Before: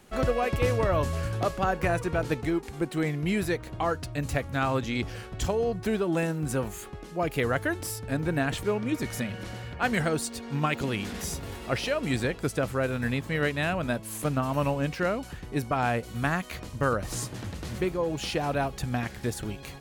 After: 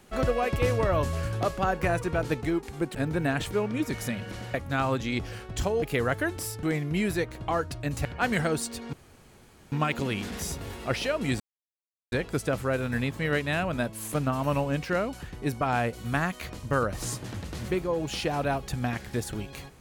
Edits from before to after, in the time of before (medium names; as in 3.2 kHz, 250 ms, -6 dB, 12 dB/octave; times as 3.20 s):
2.95–4.37 s: swap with 8.07–9.66 s
5.65–7.26 s: delete
10.54 s: insert room tone 0.79 s
12.22 s: insert silence 0.72 s